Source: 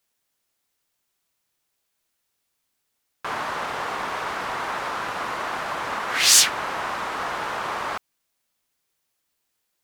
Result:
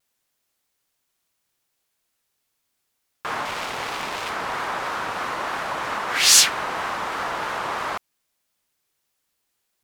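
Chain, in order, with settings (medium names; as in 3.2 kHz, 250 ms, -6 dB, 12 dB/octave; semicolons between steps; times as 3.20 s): 3.45–4.30 s: self-modulated delay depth 0.24 ms; vibrato 3.1 Hz 94 cents; trim +1 dB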